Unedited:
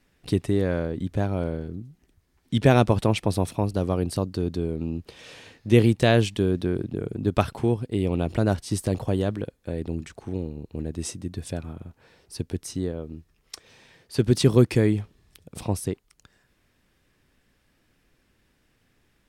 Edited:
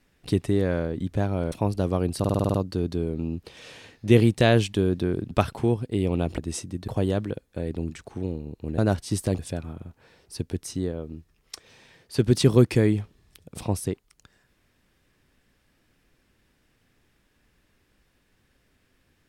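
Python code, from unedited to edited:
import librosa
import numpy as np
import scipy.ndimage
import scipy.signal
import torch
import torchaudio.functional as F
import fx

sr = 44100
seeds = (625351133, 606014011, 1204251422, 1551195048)

y = fx.edit(x, sr, fx.cut(start_s=1.52, length_s=1.97),
    fx.stutter(start_s=4.16, slice_s=0.05, count=8),
    fx.cut(start_s=6.93, length_s=0.38),
    fx.swap(start_s=8.38, length_s=0.61, other_s=10.89, other_length_s=0.5), tone=tone)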